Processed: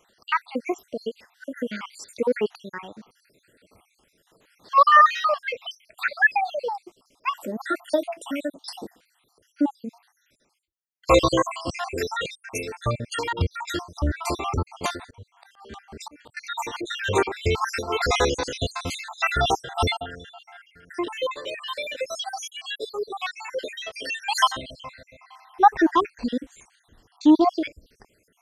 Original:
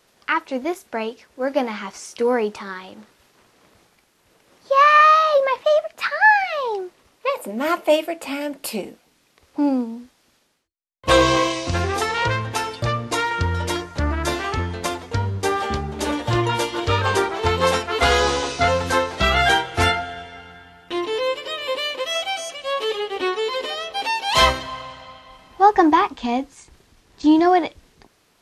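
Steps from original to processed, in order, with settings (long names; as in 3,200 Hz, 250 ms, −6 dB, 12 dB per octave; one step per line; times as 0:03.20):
time-frequency cells dropped at random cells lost 67%
0:15.00–0:16.37: volume swells 752 ms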